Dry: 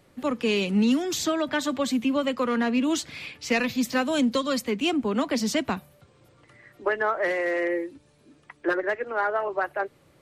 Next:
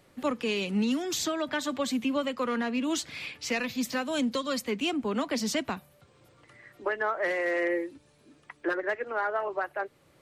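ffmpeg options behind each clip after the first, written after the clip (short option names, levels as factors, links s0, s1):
-af "lowshelf=f=450:g=-3.5,alimiter=limit=0.1:level=0:latency=1:release=472"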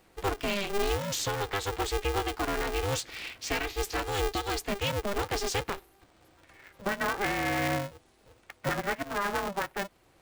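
-af "aeval=exprs='val(0)*sgn(sin(2*PI*200*n/s))':c=same,volume=0.891"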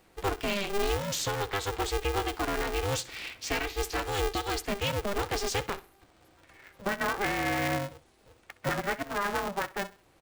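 -af "aecho=1:1:65|130|195:0.119|0.038|0.0122"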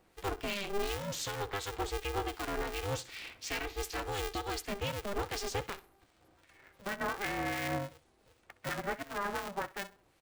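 -filter_complex "[0:a]acrossover=split=1500[s0][s1];[s0]aeval=exprs='val(0)*(1-0.5/2+0.5/2*cos(2*PI*2.7*n/s))':c=same[s2];[s1]aeval=exprs='val(0)*(1-0.5/2-0.5/2*cos(2*PI*2.7*n/s))':c=same[s3];[s2][s3]amix=inputs=2:normalize=0,volume=0.668"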